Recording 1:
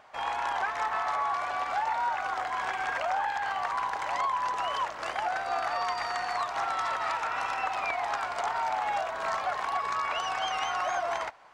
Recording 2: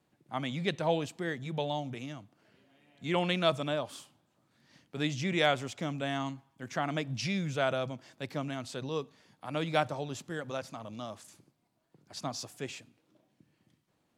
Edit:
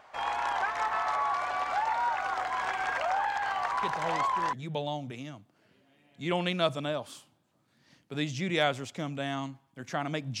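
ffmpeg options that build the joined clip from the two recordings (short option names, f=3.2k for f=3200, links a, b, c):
-filter_complex "[1:a]asplit=2[a][b];[0:a]apad=whole_dur=10.4,atrim=end=10.4,atrim=end=4.532[c];[b]atrim=start=1.358:end=7.23[d];[a]atrim=start=0.66:end=1.36,asetpts=PTS-STARTPTS,volume=-7dB,afade=t=in:d=0.004:c=hsin,afade=t=out:st=0.696:d=0.004:c=hsin,adelay=3830[e];[c][d]acrossfade=d=0.004:c1=hsin:c2=hsin[f];[f][e]amix=inputs=2:normalize=0"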